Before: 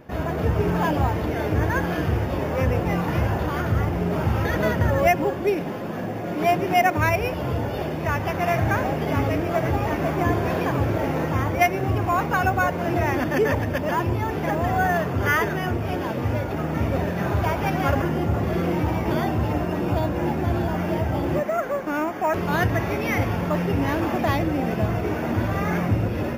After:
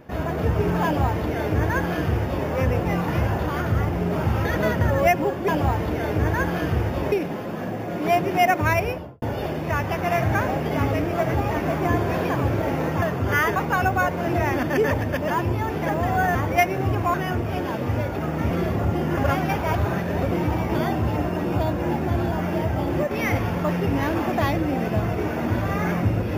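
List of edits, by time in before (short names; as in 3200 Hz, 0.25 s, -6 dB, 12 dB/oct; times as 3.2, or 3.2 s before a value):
0.84–2.48 copy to 5.48
7.17–7.58 studio fade out
11.38–12.17 swap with 14.96–15.5
16.87–18.68 reverse
21.47–22.97 cut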